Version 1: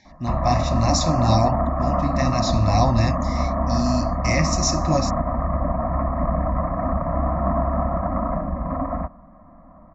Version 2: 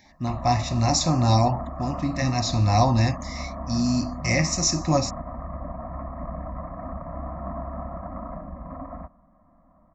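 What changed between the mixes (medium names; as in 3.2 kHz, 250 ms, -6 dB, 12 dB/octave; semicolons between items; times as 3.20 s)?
speech: remove low-pass 7.4 kHz 24 dB/octave; background -11.5 dB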